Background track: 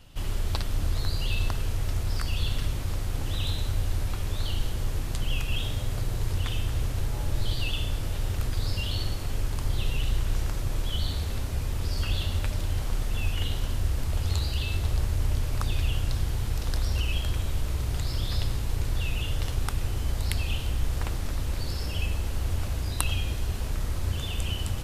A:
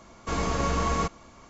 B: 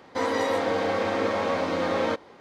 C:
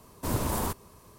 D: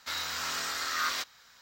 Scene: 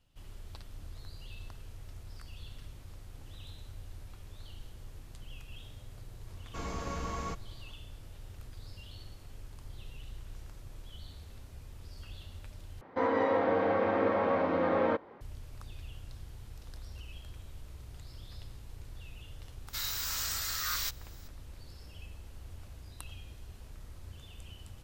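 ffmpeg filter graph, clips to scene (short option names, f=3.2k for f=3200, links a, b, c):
-filter_complex "[0:a]volume=-19dB[a];[2:a]lowpass=1.8k[b];[4:a]aemphasis=mode=production:type=75fm[c];[a]asplit=2[d][e];[d]atrim=end=12.814[f];[b]atrim=end=2.4,asetpts=PTS-STARTPTS,volume=-2.5dB[g];[e]atrim=start=15.206[h];[1:a]atrim=end=1.49,asetpts=PTS-STARTPTS,volume=-11.5dB,afade=t=in:d=0.004:c=hsin,afade=t=out:st=1.486:d=0.004:c=hsin,adelay=6270[i];[c]atrim=end=1.61,asetpts=PTS-STARTPTS,volume=-8.5dB,afade=t=in:d=0.004:c=hsin,afade=t=out:st=1.606:d=0.004:c=hsin,adelay=19670[j];[f][g]acrossfade=d=0.004:c1=hsin:c2=hsin[k];[k][h]acrossfade=d=0.004:c1=hsin:c2=hsin[l];[l][i][j]amix=inputs=3:normalize=0"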